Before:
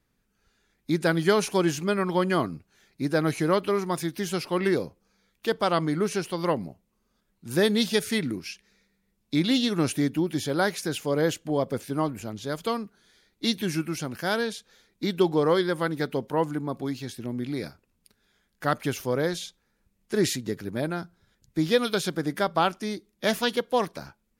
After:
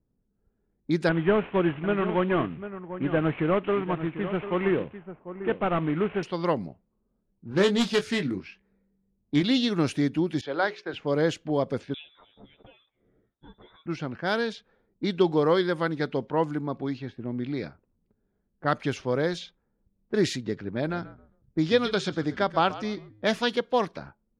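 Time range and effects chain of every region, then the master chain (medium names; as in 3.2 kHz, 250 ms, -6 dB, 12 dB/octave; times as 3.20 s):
1.09–6.23 s: CVSD coder 16 kbps + delay 746 ms -11.5 dB
7.49–9.43 s: self-modulated delay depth 0.13 ms + doubling 21 ms -7.5 dB
10.41–10.94 s: hum notches 60/120/180/240/300/360/420 Hz + expander -32 dBFS + three-band isolator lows -15 dB, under 340 Hz, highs -18 dB, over 4.7 kHz
11.94–13.86 s: doubling 12 ms -2.5 dB + compression 5:1, threshold -38 dBFS + frequency inversion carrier 3.7 kHz
20.70–23.26 s: steep low-pass 8.8 kHz 48 dB/octave + frequency-shifting echo 133 ms, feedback 31%, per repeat -53 Hz, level -16 dB
whole clip: level-controlled noise filter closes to 500 Hz, open at -22.5 dBFS; low-pass 5.1 kHz 12 dB/octave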